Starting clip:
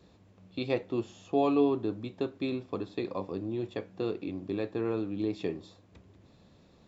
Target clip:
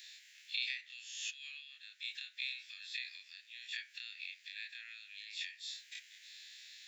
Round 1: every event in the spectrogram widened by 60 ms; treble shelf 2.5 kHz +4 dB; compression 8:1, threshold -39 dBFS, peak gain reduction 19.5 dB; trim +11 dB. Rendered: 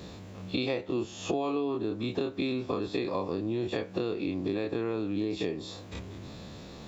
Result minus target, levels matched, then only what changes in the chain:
2 kHz band -10.5 dB
add after compression: steep high-pass 1.7 kHz 72 dB/octave

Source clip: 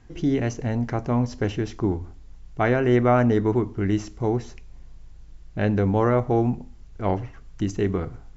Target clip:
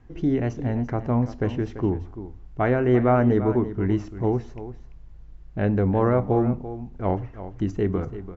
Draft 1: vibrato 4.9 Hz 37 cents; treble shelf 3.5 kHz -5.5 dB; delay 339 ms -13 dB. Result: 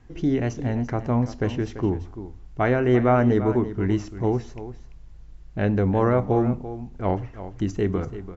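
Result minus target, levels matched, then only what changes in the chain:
8 kHz band +8.0 dB
change: treble shelf 3.5 kHz -16.5 dB

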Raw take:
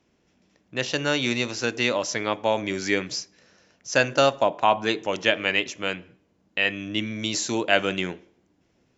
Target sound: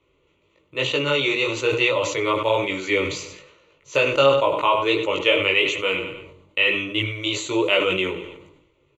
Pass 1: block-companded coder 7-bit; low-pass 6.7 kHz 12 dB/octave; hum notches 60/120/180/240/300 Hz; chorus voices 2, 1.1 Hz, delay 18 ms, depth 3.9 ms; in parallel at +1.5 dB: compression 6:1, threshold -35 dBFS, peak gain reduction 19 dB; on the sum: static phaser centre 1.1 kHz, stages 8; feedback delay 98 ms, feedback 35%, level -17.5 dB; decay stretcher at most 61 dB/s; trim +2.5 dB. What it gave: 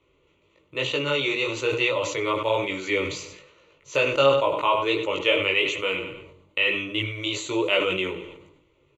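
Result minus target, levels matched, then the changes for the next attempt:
compression: peak gain reduction +10 dB
change: compression 6:1, threshold -23 dBFS, peak gain reduction 9 dB

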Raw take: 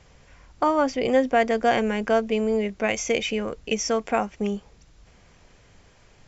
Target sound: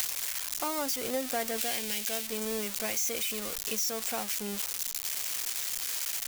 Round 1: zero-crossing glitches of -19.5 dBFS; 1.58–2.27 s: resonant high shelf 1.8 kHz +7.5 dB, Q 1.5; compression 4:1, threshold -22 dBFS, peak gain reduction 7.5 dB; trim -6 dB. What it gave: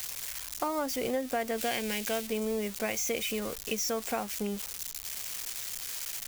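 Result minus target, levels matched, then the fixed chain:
zero-crossing glitches: distortion -11 dB
zero-crossing glitches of -8 dBFS; 1.58–2.27 s: resonant high shelf 1.8 kHz +7.5 dB, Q 1.5; compression 4:1, threshold -22 dBFS, peak gain reduction 12.5 dB; trim -6 dB

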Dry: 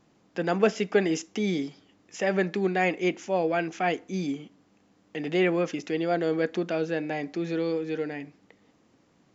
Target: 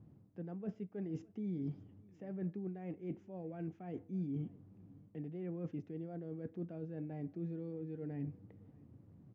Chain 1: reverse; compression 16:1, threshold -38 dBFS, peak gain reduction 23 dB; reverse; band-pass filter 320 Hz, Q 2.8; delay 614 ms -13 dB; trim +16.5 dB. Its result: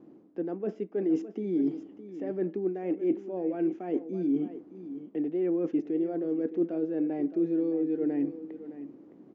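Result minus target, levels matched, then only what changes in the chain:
125 Hz band -15.0 dB; echo-to-direct +11.5 dB
change: band-pass filter 100 Hz, Q 2.8; change: delay 614 ms -24.5 dB

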